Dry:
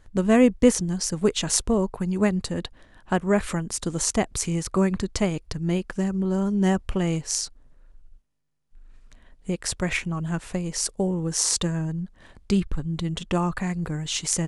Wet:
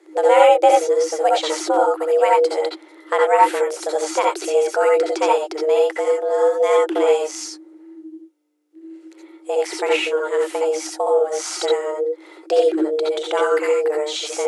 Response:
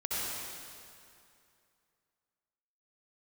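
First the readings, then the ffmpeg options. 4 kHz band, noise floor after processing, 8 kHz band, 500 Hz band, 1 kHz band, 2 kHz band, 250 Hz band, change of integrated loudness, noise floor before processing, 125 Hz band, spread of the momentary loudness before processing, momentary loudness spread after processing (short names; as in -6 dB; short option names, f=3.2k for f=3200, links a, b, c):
+3.0 dB, -47 dBFS, -4.0 dB, +12.0 dB, +15.5 dB, +6.5 dB, -6.5 dB, +6.5 dB, -55 dBFS, under -40 dB, 8 LU, 9 LU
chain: -filter_complex "[0:a]acrossover=split=4100[a][b];[b]acompressor=threshold=-39dB:ratio=4:attack=1:release=60[c];[a][c]amix=inputs=2:normalize=0,afreqshift=300[d];[1:a]atrim=start_sample=2205,afade=t=out:st=0.14:d=0.01,atrim=end_sample=6615[e];[d][e]afir=irnorm=-1:irlink=0,volume=5.5dB"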